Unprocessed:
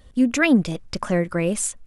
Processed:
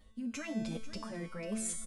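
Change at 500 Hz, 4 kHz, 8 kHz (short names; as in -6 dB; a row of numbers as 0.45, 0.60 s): -19.0, -15.0, -12.0 dB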